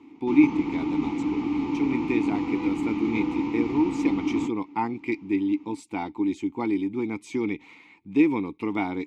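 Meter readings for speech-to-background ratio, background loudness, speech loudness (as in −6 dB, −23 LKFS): 0.5 dB, −28.0 LKFS, −27.5 LKFS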